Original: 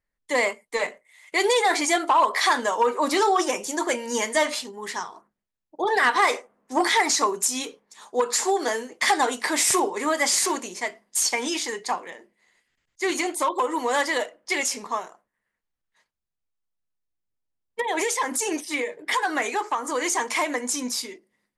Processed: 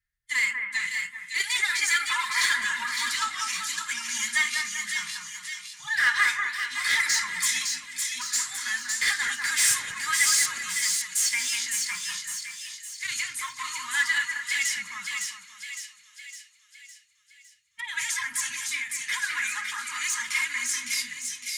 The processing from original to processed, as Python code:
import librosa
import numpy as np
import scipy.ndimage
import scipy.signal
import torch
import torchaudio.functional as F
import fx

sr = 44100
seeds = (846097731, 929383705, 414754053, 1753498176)

p1 = scipy.signal.sosfilt(scipy.signal.cheby1(3, 1.0, [140.0, 1500.0], 'bandstop', fs=sr, output='sos'), x)
p2 = fx.cheby_harmonics(p1, sr, harmonics=(7,), levels_db=(-28,), full_scale_db=-8.5)
p3 = fx.notch_comb(p2, sr, f0_hz=380.0)
p4 = 10.0 ** (-24.5 / 20.0) * (np.abs((p3 / 10.0 ** (-24.5 / 20.0) + 3.0) % 4.0 - 2.0) - 1.0)
p5 = p3 + F.gain(torch.from_numpy(p4), -6.0).numpy()
p6 = fx.hpss(p5, sr, part='percussive', gain_db=-8)
p7 = p6 + fx.echo_split(p6, sr, split_hz=2100.0, low_ms=194, high_ms=559, feedback_pct=52, wet_db=-4, dry=0)
y = F.gain(torch.from_numpy(p7), 4.5).numpy()